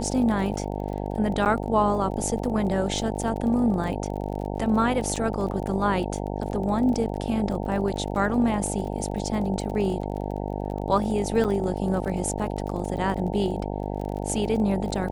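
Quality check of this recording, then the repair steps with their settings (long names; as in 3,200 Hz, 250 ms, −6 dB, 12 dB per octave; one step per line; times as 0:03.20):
mains buzz 50 Hz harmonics 18 −30 dBFS
surface crackle 33 per second −33 dBFS
0:01.45–0:01.46: drop-out 8.6 ms
0:05.16–0:05.17: drop-out 5.2 ms
0:11.44–0:11.45: drop-out 7.4 ms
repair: click removal
hum removal 50 Hz, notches 18
repair the gap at 0:01.45, 8.6 ms
repair the gap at 0:05.16, 5.2 ms
repair the gap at 0:11.44, 7.4 ms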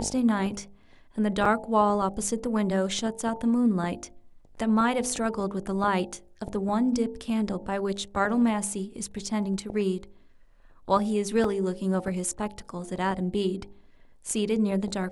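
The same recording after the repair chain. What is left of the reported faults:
none of them is left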